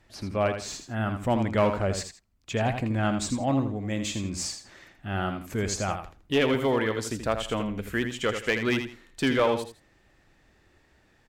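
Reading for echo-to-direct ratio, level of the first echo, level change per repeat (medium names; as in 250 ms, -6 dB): -7.5 dB, -8.0 dB, -12.0 dB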